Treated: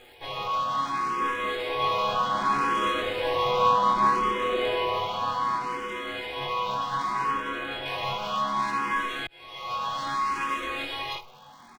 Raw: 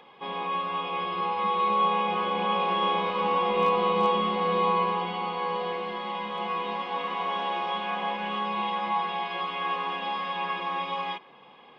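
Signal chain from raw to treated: comb filter that takes the minimum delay 8.1 ms; 7.31–7.86 s: treble shelf 3.9 kHz -10.5 dB; crackle 220 per s -48 dBFS; early reflections 21 ms -4 dB, 69 ms -17 dB; 9.27–10.03 s: fade in; barber-pole phaser +0.65 Hz; trim +4 dB

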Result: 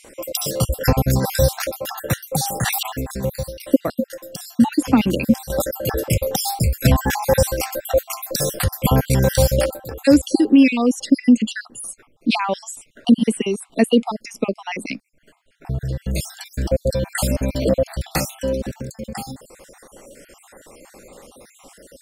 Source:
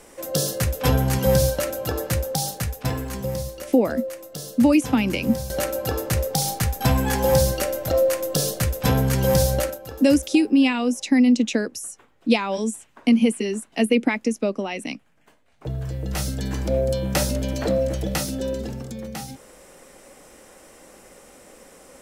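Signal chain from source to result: random holes in the spectrogram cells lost 53%; band-stop 6.2 kHz, Q 16; 2.43–2.83 s: decay stretcher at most 25 dB/s; trim +5.5 dB

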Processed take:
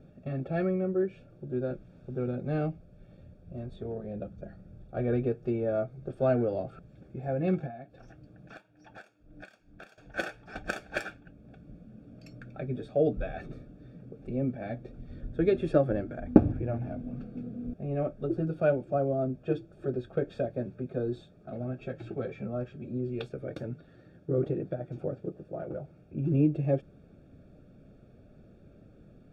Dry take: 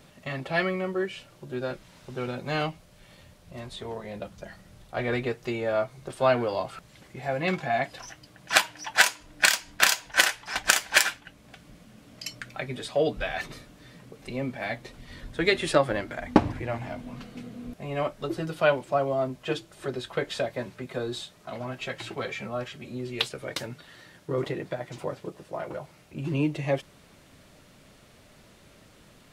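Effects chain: 7.66–9.98 s: compression 20:1, threshold -35 dBFS, peak gain reduction 23.5 dB; boxcar filter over 44 samples; trim +3 dB

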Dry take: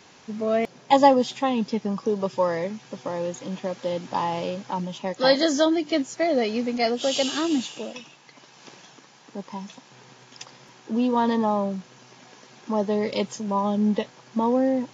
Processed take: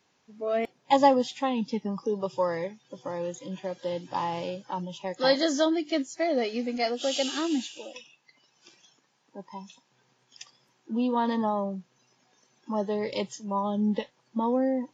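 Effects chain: spectral noise reduction 14 dB; trim -4 dB

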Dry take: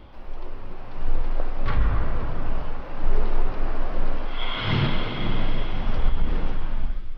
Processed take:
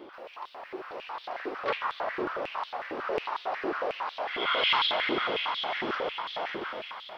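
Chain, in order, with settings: on a send: echo that smears into a reverb 948 ms, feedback 55%, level -12 dB; on the sum: step-sequenced high-pass 11 Hz 360–3600 Hz

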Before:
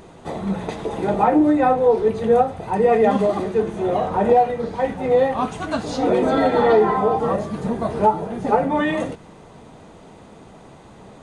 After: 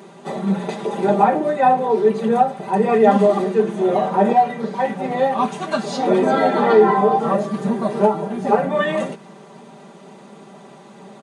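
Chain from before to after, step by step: high-pass 160 Hz 24 dB/octave; comb 5.1 ms, depth 86%

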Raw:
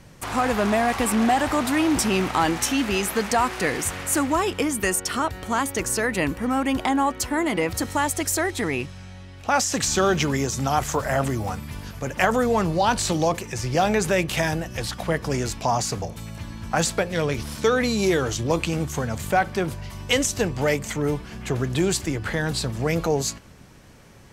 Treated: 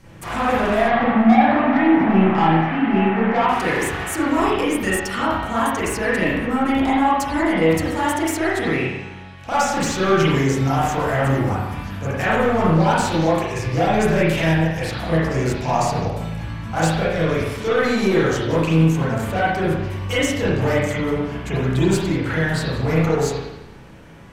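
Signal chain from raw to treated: 0.88–3.49 s: cabinet simulation 130–2200 Hz, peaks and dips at 140 Hz +7 dB, 220 Hz +8 dB, 320 Hz -3 dB, 760 Hz +7 dB, 1.9 kHz +3 dB; saturation -17.5 dBFS, distortion -11 dB; reverberation RT60 0.95 s, pre-delay 31 ms, DRR -9.5 dB; trim -3.5 dB

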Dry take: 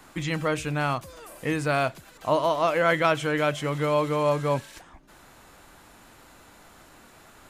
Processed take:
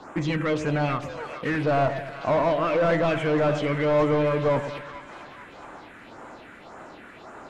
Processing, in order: 1.12–1.63 s: dead-time distortion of 0.2 ms; phase shifter stages 4, 1.8 Hz, lowest notch 760–4300 Hz; overdrive pedal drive 26 dB, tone 1.1 kHz, clips at -10.5 dBFS; distance through air 59 m; two-band feedback delay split 1 kHz, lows 107 ms, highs 437 ms, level -9.5 dB; trim -3 dB

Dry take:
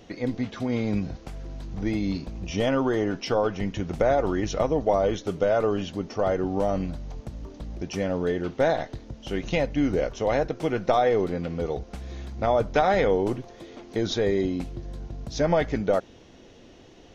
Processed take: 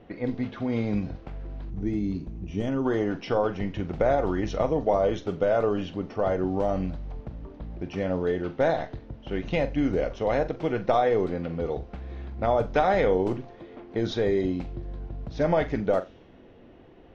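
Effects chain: treble shelf 5.7 kHz -11 dB; on a send: flutter echo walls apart 7.4 m, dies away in 0.21 s; on the sum: level-controlled noise filter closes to 2.1 kHz, open at -17 dBFS; time-frequency box 1.70–2.85 s, 450–5600 Hz -9 dB; trim -1 dB

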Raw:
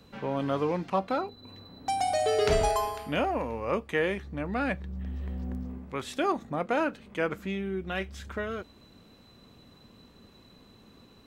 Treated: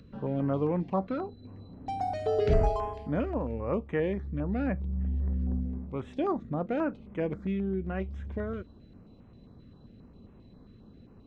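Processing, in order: bass shelf 300 Hz +8.5 dB; upward compressor, threshold -48 dBFS; tape spacing loss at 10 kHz 27 dB; step-sequenced notch 7.5 Hz 820–4500 Hz; trim -2 dB

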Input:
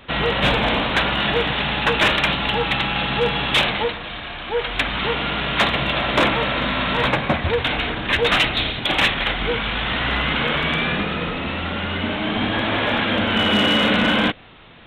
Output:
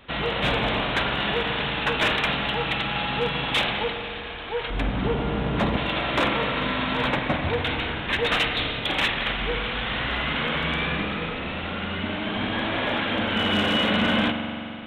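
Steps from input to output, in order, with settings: 4.70–5.77 s: tilt shelf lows +9.5 dB, about 820 Hz; spring tank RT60 2.8 s, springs 43 ms, chirp 75 ms, DRR 5 dB; trim -6 dB

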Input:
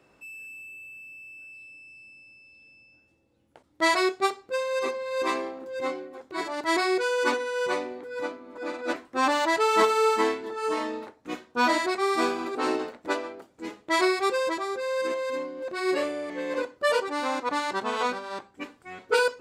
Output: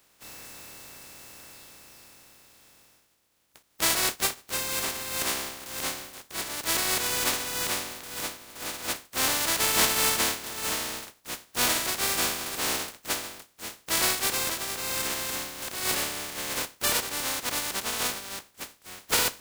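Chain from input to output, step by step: spectral contrast reduction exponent 0.18; trim -1.5 dB

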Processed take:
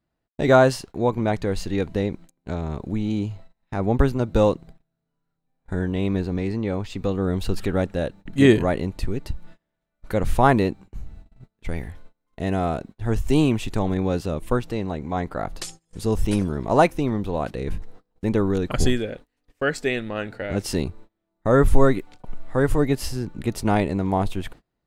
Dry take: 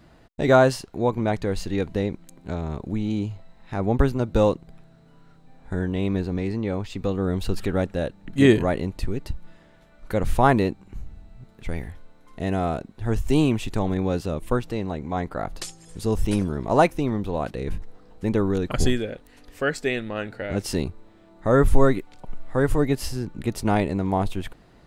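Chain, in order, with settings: gate -41 dBFS, range -27 dB; trim +1 dB

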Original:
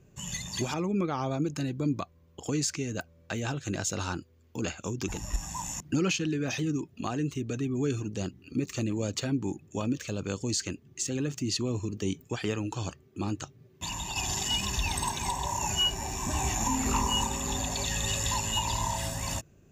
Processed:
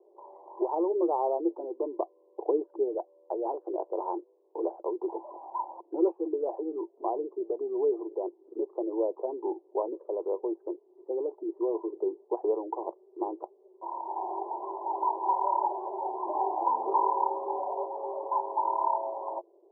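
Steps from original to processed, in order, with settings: Chebyshev band-pass 340–1000 Hz, order 5; 1.99–2.95 s: tilt EQ -3 dB/octave; trim +7.5 dB

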